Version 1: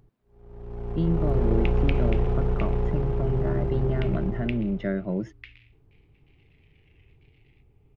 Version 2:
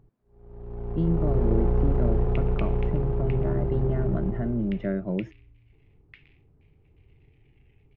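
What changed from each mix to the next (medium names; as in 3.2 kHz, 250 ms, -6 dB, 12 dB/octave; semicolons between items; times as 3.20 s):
second sound: entry +0.70 s; master: add treble shelf 2.2 kHz -11.5 dB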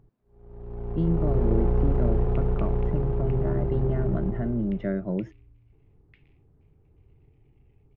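second sound -10.0 dB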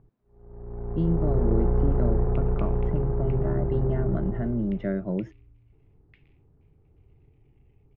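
first sound: add low-pass 1.9 kHz 24 dB/octave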